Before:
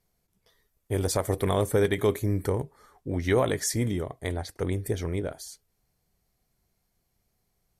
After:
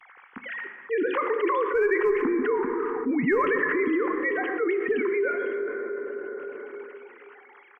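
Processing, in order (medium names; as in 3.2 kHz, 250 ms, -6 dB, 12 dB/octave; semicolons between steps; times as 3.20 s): formants replaced by sine waves; bass shelf 330 Hz -4 dB; in parallel at -6 dB: one-sided clip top -19.5 dBFS; on the sum: static phaser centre 1.5 kHz, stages 4; on a send: delay 116 ms -23.5 dB; on the sum: plate-style reverb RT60 2.5 s, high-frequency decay 0.4×, DRR 9.5 dB; level flattener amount 70%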